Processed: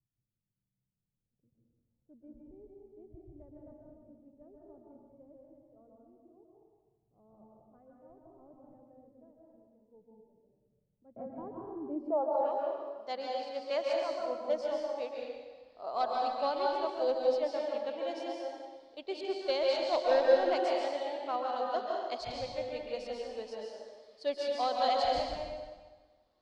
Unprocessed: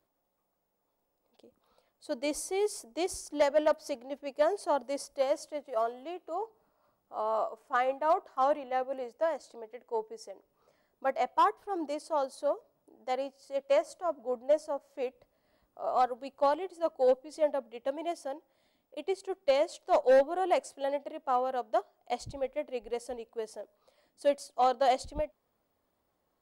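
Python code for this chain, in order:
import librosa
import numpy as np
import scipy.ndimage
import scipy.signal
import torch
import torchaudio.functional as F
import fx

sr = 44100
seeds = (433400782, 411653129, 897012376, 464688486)

p1 = fx.filter_sweep_lowpass(x, sr, from_hz=130.0, to_hz=4400.0, start_s=11.81, end_s=12.6, q=3.5)
p2 = p1 + fx.echo_single(p1, sr, ms=113, db=-16.0, dry=0)
p3 = fx.rev_plate(p2, sr, seeds[0], rt60_s=1.4, hf_ratio=0.9, predelay_ms=120, drr_db=-2.5)
p4 = fx.band_squash(p3, sr, depth_pct=70, at=(11.16, 12.41))
y = F.gain(torch.from_numpy(p4), -6.5).numpy()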